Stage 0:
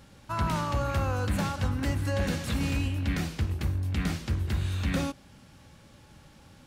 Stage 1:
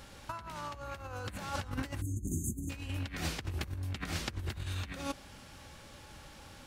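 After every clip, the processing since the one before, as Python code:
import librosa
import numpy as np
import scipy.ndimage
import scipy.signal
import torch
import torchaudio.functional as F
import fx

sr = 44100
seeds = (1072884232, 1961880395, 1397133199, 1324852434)

y = fx.spec_erase(x, sr, start_s=2.02, length_s=0.68, low_hz=390.0, high_hz=6200.0)
y = fx.peak_eq(y, sr, hz=160.0, db=-9.0, octaves=2.0)
y = fx.over_compress(y, sr, threshold_db=-37.0, ratio=-0.5)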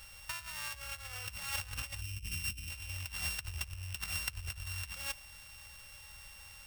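y = np.r_[np.sort(x[:len(x) // 16 * 16].reshape(-1, 16), axis=1).ravel(), x[len(x) // 16 * 16:]]
y = fx.tone_stack(y, sr, knobs='10-0-10')
y = F.gain(torch.from_numpy(y), 4.5).numpy()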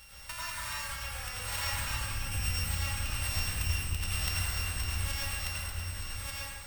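y = fx.octave_divider(x, sr, octaves=2, level_db=-5.0)
y = y + 10.0 ** (-3.0 / 20.0) * np.pad(y, (int(1188 * sr / 1000.0), 0))[:len(y)]
y = fx.rev_plate(y, sr, seeds[0], rt60_s=1.7, hf_ratio=0.55, predelay_ms=75, drr_db=-7.5)
y = F.gain(torch.from_numpy(y), -1.0).numpy()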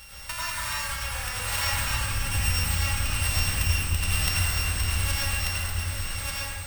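y = x + 10.0 ** (-10.0 / 20.0) * np.pad(x, (int(721 * sr / 1000.0), 0))[:len(x)]
y = F.gain(torch.from_numpy(y), 7.0).numpy()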